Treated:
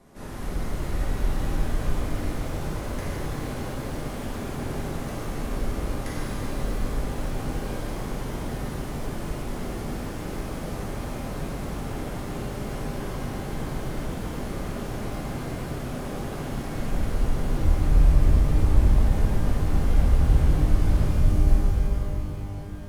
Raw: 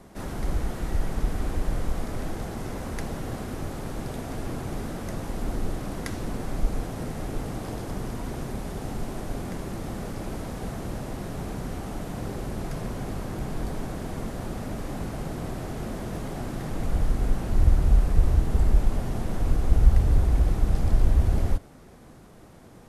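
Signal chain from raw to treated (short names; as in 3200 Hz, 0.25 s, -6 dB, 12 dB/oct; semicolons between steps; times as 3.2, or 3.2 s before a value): spectral delete 21.09–21.47, 250–4400 Hz; shimmer reverb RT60 3.2 s, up +12 st, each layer -8 dB, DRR -7.5 dB; gain -7.5 dB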